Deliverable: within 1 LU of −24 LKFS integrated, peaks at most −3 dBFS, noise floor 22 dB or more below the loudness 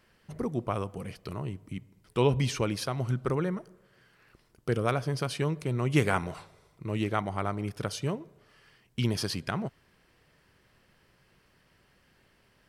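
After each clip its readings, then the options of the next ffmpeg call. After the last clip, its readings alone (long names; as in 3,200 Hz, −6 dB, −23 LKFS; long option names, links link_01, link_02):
integrated loudness −31.5 LKFS; sample peak −11.0 dBFS; target loudness −24.0 LKFS
→ -af "volume=7.5dB"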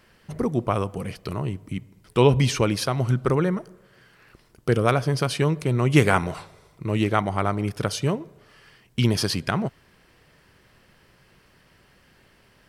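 integrated loudness −24.0 LKFS; sample peak −3.5 dBFS; background noise floor −59 dBFS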